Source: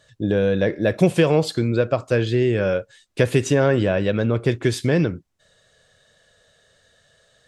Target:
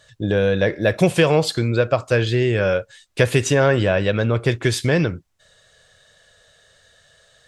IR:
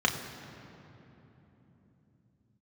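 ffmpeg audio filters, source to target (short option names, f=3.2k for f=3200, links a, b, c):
-af "equalizer=f=260:w=0.69:g=-7,volume=5dB"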